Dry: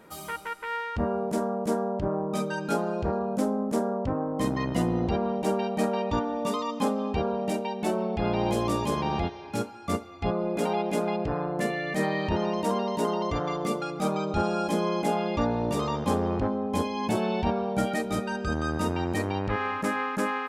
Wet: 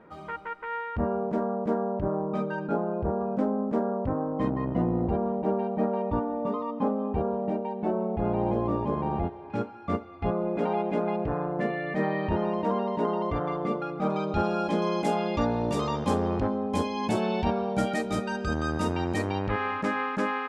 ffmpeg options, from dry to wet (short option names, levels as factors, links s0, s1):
-af "asetnsamples=n=441:p=0,asendcmd='2.67 lowpass f 1100;3.21 lowpass f 1800;4.5 lowpass f 1100;9.5 lowpass f 2000;14.1 lowpass f 3800;14.82 lowpass f 8700;19.46 lowpass f 4500',lowpass=1800"